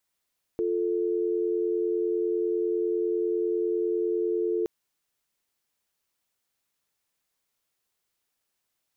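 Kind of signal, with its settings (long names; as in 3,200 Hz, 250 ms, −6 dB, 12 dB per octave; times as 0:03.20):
call progress tone dial tone, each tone −26.5 dBFS 4.07 s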